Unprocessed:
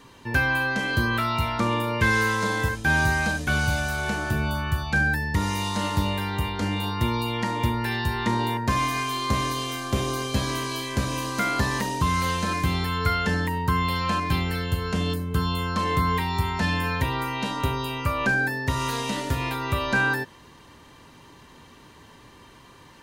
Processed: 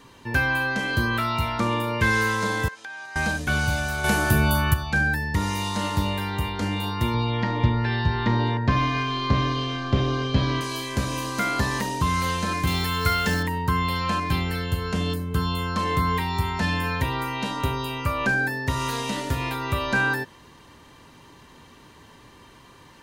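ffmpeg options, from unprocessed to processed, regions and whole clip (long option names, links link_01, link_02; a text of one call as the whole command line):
ffmpeg -i in.wav -filter_complex "[0:a]asettb=1/sr,asplit=3[link_01][link_02][link_03];[link_01]atrim=end=2.684[link_04];[link_02]atrim=start=2.68:end=3.16,asetpts=PTS-STARTPTS,afade=type=in:duration=0.004:curve=qsin,afade=type=out:start_time=0.476:duration=0.004:curve=qsin,acompressor=threshold=-31dB:ratio=20:attack=3.2:release=140:knee=1:detection=peak,highpass=700,lowpass=6800[link_05];[link_03]atrim=start=3.156[link_06];[link_04][link_05]acrossfade=duration=0.004:curve1=hsin:curve2=qsin[link_07];[link_07][link_06]acrossfade=duration=0.004:curve1=qsin:curve2=hsin,asettb=1/sr,asplit=3[link_08][link_09][link_10];[link_08]atrim=end=4.044[link_11];[link_09]atrim=start=4.04:end=4.74,asetpts=PTS-STARTPTS,afade=type=in:duration=0.004:curve=qsin,afade=type=out:start_time=0.696:duration=0.004:curve=qsin,equalizer=frequency=12000:width=1.1:gain=11.5,acontrast=42[link_12];[link_10]atrim=start=4.736[link_13];[link_11][link_12]acrossfade=duration=0.004:curve1=hsin:curve2=qsin[link_14];[link_14][link_13]acrossfade=duration=0.004:curve1=qsin:curve2=hsin,asettb=1/sr,asplit=3[link_15][link_16][link_17];[link_15]atrim=end=7.144[link_18];[link_16]atrim=start=7.14:end=10.61,asetpts=PTS-STARTPTS,afade=type=in:duration=0.004:curve=qsin,afade=type=out:start_time=3.466:duration=0.004:curve=qsin,lowpass=frequency=4600:width=0.5412,lowpass=frequency=4600:width=1.3066,lowshelf=frequency=250:gain=6,aecho=1:1:7:0.31,atrim=end_sample=153027[link_19];[link_17]atrim=start=10.606[link_20];[link_18][link_19]acrossfade=duration=0.004:curve1=hsin:curve2=qsin[link_21];[link_21][link_20]acrossfade=duration=0.004:curve1=qsin:curve2=hsin,asettb=1/sr,asplit=3[link_22][link_23][link_24];[link_22]atrim=end=12.674[link_25];[link_23]atrim=start=12.67:end=13.43,asetpts=PTS-STARTPTS,afade=type=in:duration=0.004:curve=qsin,afade=type=out:start_time=0.756:duration=0.004:curve=qsin,highshelf=frequency=3100:gain=7,acrusher=bits=4:mode=log:mix=0:aa=0.000001[link_26];[link_24]atrim=start=13.426[link_27];[link_25][link_26]acrossfade=duration=0.004:curve1=hsin:curve2=qsin[link_28];[link_28][link_27]acrossfade=duration=0.004:curve1=qsin:curve2=hsin" out.wav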